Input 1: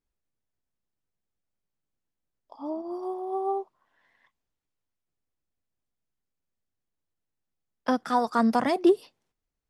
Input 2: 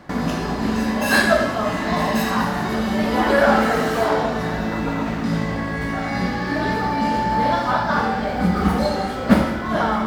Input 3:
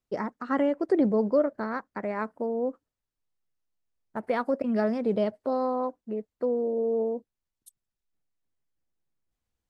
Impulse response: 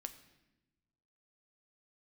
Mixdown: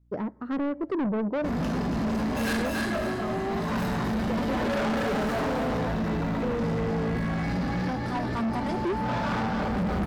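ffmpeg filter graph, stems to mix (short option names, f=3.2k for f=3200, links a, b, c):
-filter_complex "[0:a]aecho=1:1:5.2:0.65,aeval=exprs='val(0)+0.000794*(sin(2*PI*60*n/s)+sin(2*PI*2*60*n/s)/2+sin(2*PI*3*60*n/s)/3+sin(2*PI*4*60*n/s)/4+sin(2*PI*5*60*n/s)/5)':c=same,volume=-7.5dB,asplit=2[a][b];[1:a]adelay=1350,volume=-6.5dB,asplit=2[c][d];[d]volume=-4.5dB[e];[2:a]lowpass=f=1.1k:p=1,volume=-3dB,asplit=2[f][g];[g]volume=-9dB[h];[b]apad=whole_len=503453[i];[c][i]sidechaincompress=threshold=-51dB:ratio=8:attack=44:release=112[j];[3:a]atrim=start_sample=2205[k];[h][k]afir=irnorm=-1:irlink=0[l];[e]aecho=0:1:283|566|849|1132:1|0.3|0.09|0.027[m];[a][j][f][l][m]amix=inputs=5:normalize=0,lowshelf=f=330:g=10,asoftclip=type=tanh:threshold=-24.5dB"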